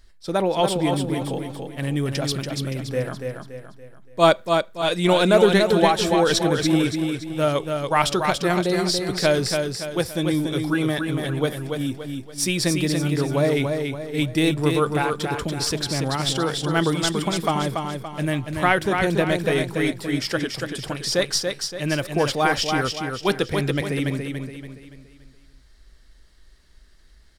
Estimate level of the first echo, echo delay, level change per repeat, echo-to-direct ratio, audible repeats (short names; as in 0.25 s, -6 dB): -5.0 dB, 0.285 s, -7.5 dB, -4.0 dB, 4